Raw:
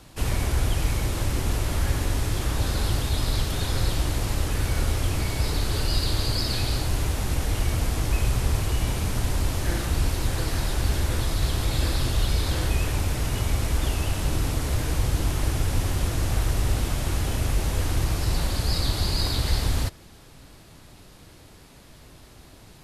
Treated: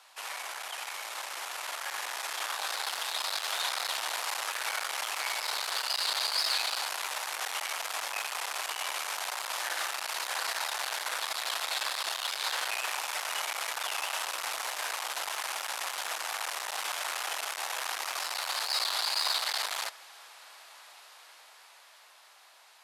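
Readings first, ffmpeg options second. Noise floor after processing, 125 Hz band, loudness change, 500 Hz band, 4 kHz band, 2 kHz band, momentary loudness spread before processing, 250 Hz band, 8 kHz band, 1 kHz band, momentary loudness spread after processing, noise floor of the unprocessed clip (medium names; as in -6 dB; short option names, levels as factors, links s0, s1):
-56 dBFS, under -40 dB, -5.5 dB, -10.5 dB, +0.5 dB, +1.5 dB, 2 LU, under -30 dB, -1.5 dB, +1.0 dB, 9 LU, -49 dBFS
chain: -af "dynaudnorm=f=340:g=13:m=2.51,highshelf=f=5400:g=-6,aeval=exprs='(tanh(7.94*val(0)+0.35)-tanh(0.35))/7.94':c=same,highpass=f=780:w=0.5412,highpass=f=780:w=1.3066"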